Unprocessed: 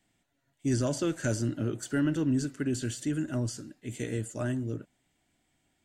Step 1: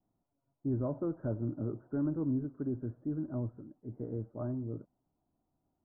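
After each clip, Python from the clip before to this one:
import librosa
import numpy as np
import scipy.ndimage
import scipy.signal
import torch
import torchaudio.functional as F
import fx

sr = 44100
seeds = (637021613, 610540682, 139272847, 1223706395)

y = scipy.signal.sosfilt(scipy.signal.butter(8, 1200.0, 'lowpass', fs=sr, output='sos'), x)
y = F.gain(torch.from_numpy(y), -5.0).numpy()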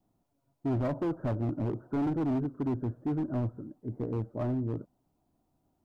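y = np.clip(x, -10.0 ** (-33.0 / 20.0), 10.0 ** (-33.0 / 20.0))
y = F.gain(torch.from_numpy(y), 6.5).numpy()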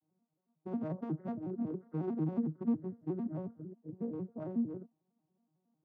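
y = fx.vocoder_arp(x, sr, chord='minor triad', root=51, every_ms=91)
y = F.gain(torch.from_numpy(y), -4.5).numpy()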